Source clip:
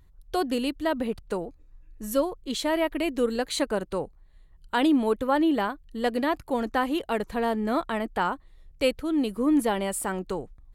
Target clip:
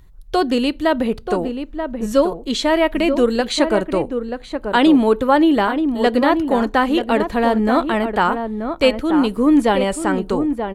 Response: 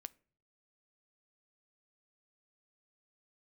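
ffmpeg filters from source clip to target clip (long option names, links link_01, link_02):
-filter_complex "[0:a]asplit=2[link_01][link_02];[link_02]adelay=932.9,volume=-7dB,highshelf=frequency=4000:gain=-21[link_03];[link_01][link_03]amix=inputs=2:normalize=0,asplit=2[link_04][link_05];[1:a]atrim=start_sample=2205,asetrate=70560,aresample=44100[link_06];[link_05][link_06]afir=irnorm=-1:irlink=0,volume=17dB[link_07];[link_04][link_07]amix=inputs=2:normalize=0,acrossover=split=7700[link_08][link_09];[link_09]acompressor=threshold=-50dB:ratio=4:attack=1:release=60[link_10];[link_08][link_10]amix=inputs=2:normalize=0,volume=-1dB"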